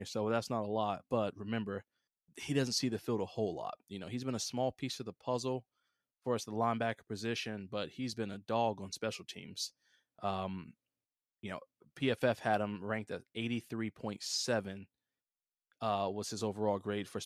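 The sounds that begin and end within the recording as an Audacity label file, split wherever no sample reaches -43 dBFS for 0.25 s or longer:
2.370000	5.590000	sound
6.270000	9.670000	sound
10.230000	10.690000	sound
11.440000	11.590000	sound
11.970000	14.830000	sound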